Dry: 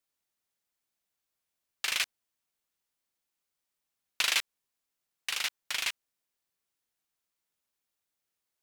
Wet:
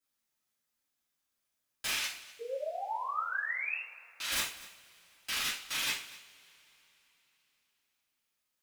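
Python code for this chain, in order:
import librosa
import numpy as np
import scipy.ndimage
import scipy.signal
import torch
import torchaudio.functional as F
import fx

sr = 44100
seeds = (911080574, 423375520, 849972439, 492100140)

p1 = fx.over_compress(x, sr, threshold_db=-35.0, ratio=-1.0, at=(1.9, 4.32))
p2 = 10.0 ** (-26.0 / 20.0) * (np.abs((p1 / 10.0 ** (-26.0 / 20.0) + 3.0) % 4.0 - 2.0) - 1.0)
p3 = fx.spec_paint(p2, sr, seeds[0], shape='rise', start_s=2.39, length_s=1.39, low_hz=450.0, high_hz=2800.0, level_db=-37.0)
p4 = p3 + fx.echo_single(p3, sr, ms=245, db=-19.0, dry=0)
p5 = fx.rev_double_slope(p4, sr, seeds[1], early_s=0.41, late_s=3.9, knee_db=-28, drr_db=-9.5)
y = p5 * librosa.db_to_amplitude(-8.5)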